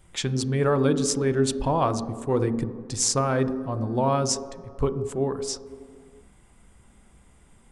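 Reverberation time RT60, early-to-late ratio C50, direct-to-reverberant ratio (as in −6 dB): 2.1 s, 13.0 dB, 11.0 dB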